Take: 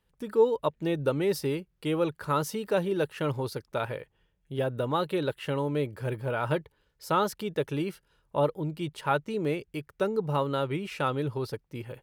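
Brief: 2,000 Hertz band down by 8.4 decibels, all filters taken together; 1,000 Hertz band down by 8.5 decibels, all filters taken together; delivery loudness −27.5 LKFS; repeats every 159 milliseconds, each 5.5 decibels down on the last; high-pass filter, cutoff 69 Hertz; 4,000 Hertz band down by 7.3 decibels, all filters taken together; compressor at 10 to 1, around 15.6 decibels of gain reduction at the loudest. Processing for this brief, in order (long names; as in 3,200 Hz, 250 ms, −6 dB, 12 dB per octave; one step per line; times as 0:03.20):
high-pass filter 69 Hz
parametric band 1,000 Hz −9 dB
parametric band 2,000 Hz −6.5 dB
parametric band 4,000 Hz −6.5 dB
downward compressor 10 to 1, threshold −34 dBFS
repeating echo 159 ms, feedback 53%, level −5.5 dB
level +11 dB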